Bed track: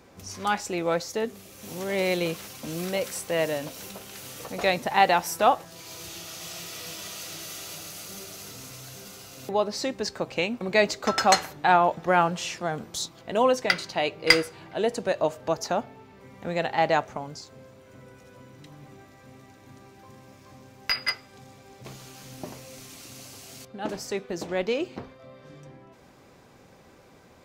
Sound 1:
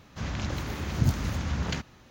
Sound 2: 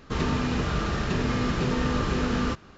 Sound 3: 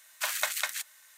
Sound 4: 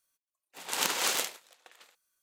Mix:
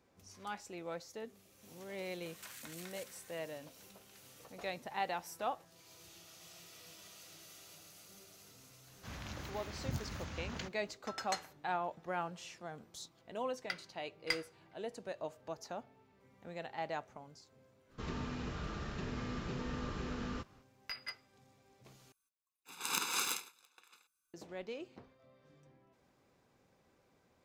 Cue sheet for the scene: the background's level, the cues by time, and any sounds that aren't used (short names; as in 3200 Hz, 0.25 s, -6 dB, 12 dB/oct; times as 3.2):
bed track -17.5 dB
2.22 add 3 -4 dB + compressor 8:1, threshold -44 dBFS
8.87 add 1 -10 dB + low shelf 390 Hz -6 dB
17.88 add 2 -15 dB, fades 0.05 s
22.12 replace with 4 -9 dB + comb 0.8 ms, depth 91%